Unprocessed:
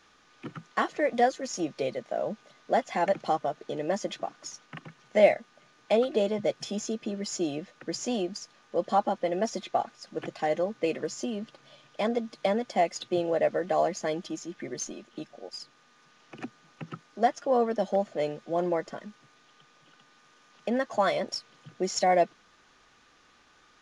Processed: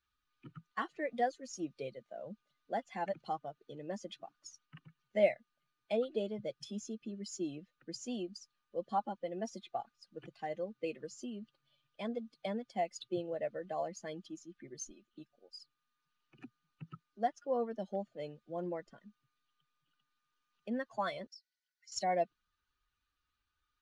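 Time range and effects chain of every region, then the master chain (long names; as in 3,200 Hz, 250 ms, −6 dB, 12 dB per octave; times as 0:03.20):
0:21.27–0:21.92: Chebyshev high-pass with heavy ripple 1,400 Hz, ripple 9 dB + downward compressor 4 to 1, threshold −39 dBFS
whole clip: spectral dynamics exaggerated over time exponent 1.5; low-shelf EQ 100 Hz +7 dB; level −7.5 dB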